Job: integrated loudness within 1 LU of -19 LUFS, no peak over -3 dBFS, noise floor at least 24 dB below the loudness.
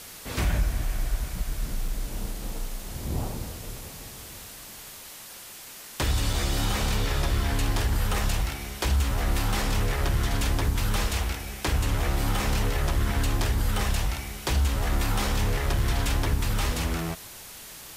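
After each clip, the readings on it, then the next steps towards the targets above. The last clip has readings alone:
dropouts 2; longest dropout 3.5 ms; noise floor -44 dBFS; noise floor target -52 dBFS; loudness -28.0 LUFS; peak -15.5 dBFS; loudness target -19.0 LUFS
-> interpolate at 1.88/6.33, 3.5 ms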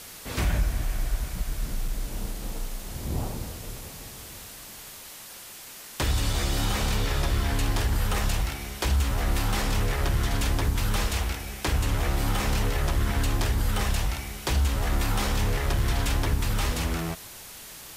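dropouts 0; noise floor -44 dBFS; noise floor target -52 dBFS
-> denoiser 8 dB, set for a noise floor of -44 dBFS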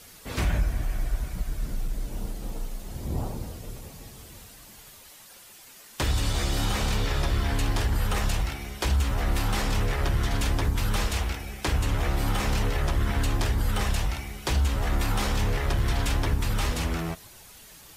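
noise floor -49 dBFS; noise floor target -53 dBFS
-> denoiser 6 dB, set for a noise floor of -49 dBFS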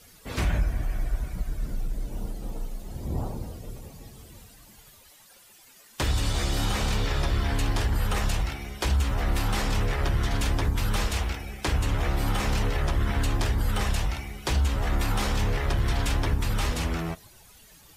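noise floor -54 dBFS; loudness -28.5 LUFS; peak -15.5 dBFS; loudness target -19.0 LUFS
-> gain +9.5 dB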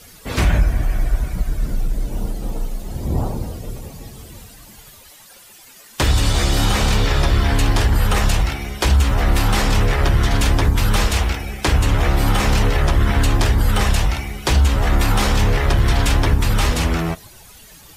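loudness -19.0 LUFS; peak -6.0 dBFS; noise floor -44 dBFS

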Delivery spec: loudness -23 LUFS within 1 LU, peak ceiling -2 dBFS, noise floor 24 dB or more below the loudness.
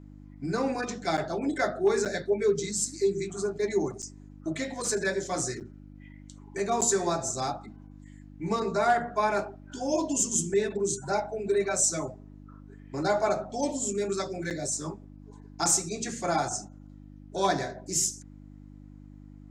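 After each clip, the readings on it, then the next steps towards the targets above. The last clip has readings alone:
dropouts 6; longest dropout 7.7 ms; hum 50 Hz; harmonics up to 300 Hz; hum level -45 dBFS; loudness -28.5 LUFS; peak -13.0 dBFS; loudness target -23.0 LUFS
-> interpolate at 1.17/2.05/4.02/5.6/6.81/14.5, 7.7 ms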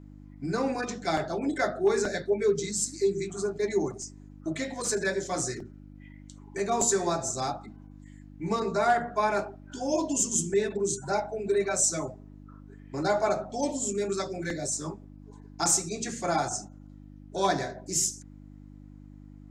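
dropouts 0; hum 50 Hz; harmonics up to 300 Hz; hum level -45 dBFS
-> de-hum 50 Hz, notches 6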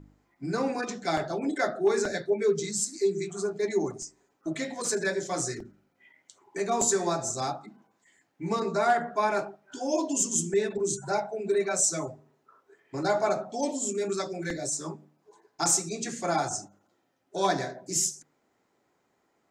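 hum none; loudness -28.5 LUFS; peak -12.5 dBFS; loudness target -23.0 LUFS
-> gain +5.5 dB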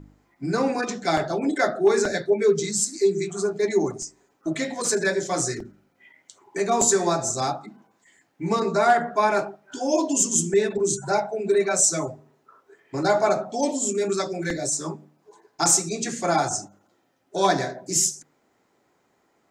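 loudness -23.0 LUFS; peak -7.0 dBFS; noise floor -67 dBFS

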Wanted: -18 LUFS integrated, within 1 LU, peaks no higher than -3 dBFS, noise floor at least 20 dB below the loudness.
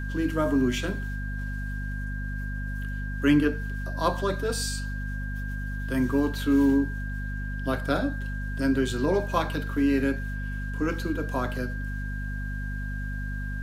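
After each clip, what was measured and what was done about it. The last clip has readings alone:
hum 50 Hz; harmonics up to 250 Hz; hum level -30 dBFS; steady tone 1600 Hz; tone level -38 dBFS; loudness -28.5 LUFS; peak -10.0 dBFS; loudness target -18.0 LUFS
-> notches 50/100/150/200/250 Hz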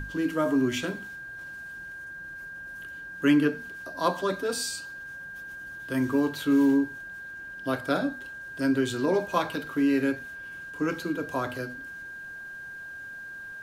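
hum none; steady tone 1600 Hz; tone level -38 dBFS
-> notch 1600 Hz, Q 30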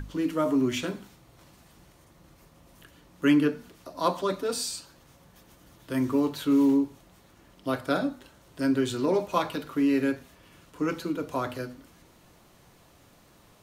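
steady tone none; loudness -27.5 LUFS; peak -11.0 dBFS; loudness target -18.0 LUFS
-> gain +9.5 dB; limiter -3 dBFS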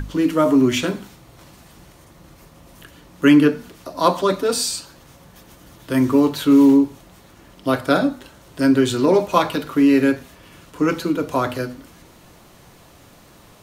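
loudness -18.0 LUFS; peak -3.0 dBFS; noise floor -48 dBFS

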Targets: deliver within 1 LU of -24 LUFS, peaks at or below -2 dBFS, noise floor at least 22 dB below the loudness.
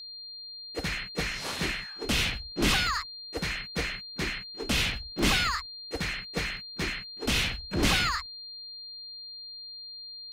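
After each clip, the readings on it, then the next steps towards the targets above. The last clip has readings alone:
dropouts 4; longest dropout 2.0 ms; steady tone 4200 Hz; tone level -40 dBFS; loudness -30.0 LUFS; peak -13.0 dBFS; loudness target -24.0 LUFS
-> interpolate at 2.18/2.87/5.19/6.57, 2 ms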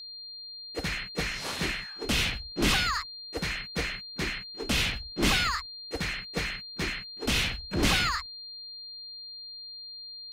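dropouts 0; steady tone 4200 Hz; tone level -40 dBFS
-> notch 4200 Hz, Q 30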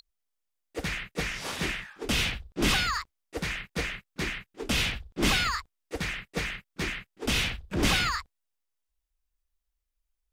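steady tone none; loudness -29.5 LUFS; peak -13.0 dBFS; loudness target -24.0 LUFS
-> gain +5.5 dB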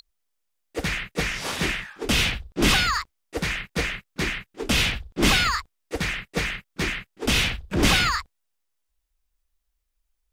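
loudness -24.0 LUFS; peak -7.5 dBFS; noise floor -76 dBFS

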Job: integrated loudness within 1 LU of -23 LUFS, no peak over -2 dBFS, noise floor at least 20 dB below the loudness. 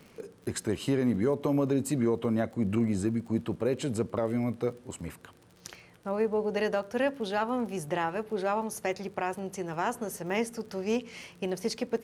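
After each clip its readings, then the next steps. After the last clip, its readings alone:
ticks 34/s; loudness -30.5 LUFS; peak -17.0 dBFS; loudness target -23.0 LUFS
-> de-click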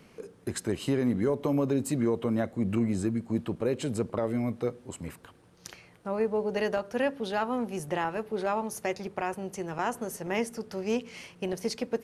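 ticks 0/s; loudness -30.5 LUFS; peak -17.0 dBFS; loudness target -23.0 LUFS
-> gain +7.5 dB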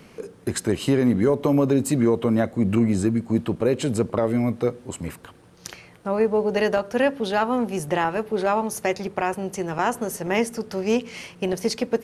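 loudness -23.0 LUFS; peak -9.5 dBFS; noise floor -50 dBFS

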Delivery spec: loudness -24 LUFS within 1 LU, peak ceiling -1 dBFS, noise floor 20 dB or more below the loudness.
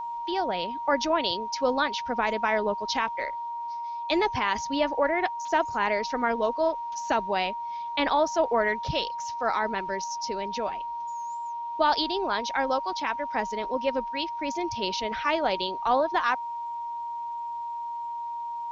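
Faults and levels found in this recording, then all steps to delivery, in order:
steady tone 940 Hz; tone level -31 dBFS; loudness -28.0 LUFS; peak -11.5 dBFS; loudness target -24.0 LUFS
-> notch 940 Hz, Q 30; gain +4 dB

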